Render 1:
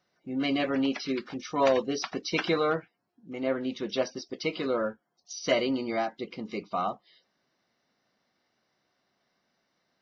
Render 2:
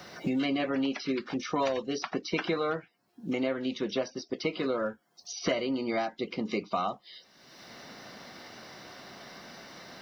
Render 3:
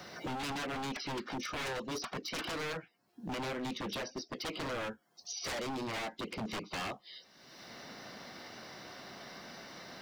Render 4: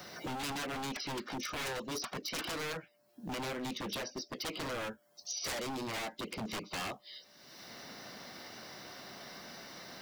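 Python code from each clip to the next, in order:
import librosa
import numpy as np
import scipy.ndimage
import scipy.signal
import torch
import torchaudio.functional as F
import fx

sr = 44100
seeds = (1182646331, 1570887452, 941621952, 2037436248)

y1 = fx.band_squash(x, sr, depth_pct=100)
y1 = y1 * librosa.db_to_amplitude(-2.0)
y2 = 10.0 ** (-31.0 / 20.0) * (np.abs((y1 / 10.0 ** (-31.0 / 20.0) + 3.0) % 4.0 - 2.0) - 1.0)
y2 = y2 * librosa.db_to_amplitude(-1.5)
y3 = y2 + 10.0 ** (-69.0 / 20.0) * np.sin(2.0 * np.pi * 590.0 * np.arange(len(y2)) / sr)
y3 = fx.high_shelf(y3, sr, hz=7600.0, db=10.5)
y3 = y3 * librosa.db_to_amplitude(-1.0)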